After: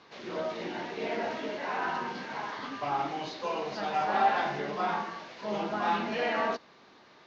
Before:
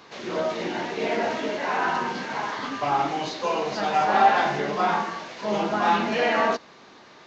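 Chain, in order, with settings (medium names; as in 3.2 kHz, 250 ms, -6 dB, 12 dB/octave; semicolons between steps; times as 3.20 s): low-pass 6 kHz 24 dB/octave; trim -7.5 dB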